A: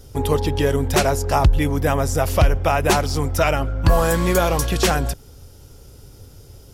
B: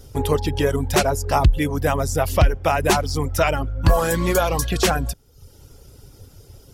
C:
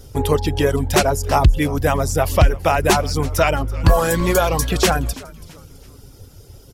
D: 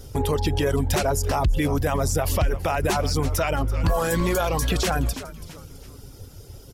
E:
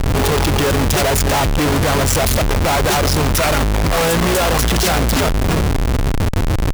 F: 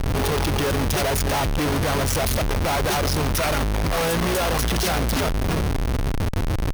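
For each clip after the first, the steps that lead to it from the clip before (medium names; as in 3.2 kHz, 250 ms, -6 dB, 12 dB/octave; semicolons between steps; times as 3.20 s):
reverb removal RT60 0.66 s
frequency-shifting echo 331 ms, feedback 40%, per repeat -110 Hz, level -19.5 dB; trim +2.5 dB
peak limiter -14 dBFS, peak gain reduction 10.5 dB
Schmitt trigger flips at -39.5 dBFS; trim +8.5 dB
band-stop 7.4 kHz, Q 9.1; trim -6.5 dB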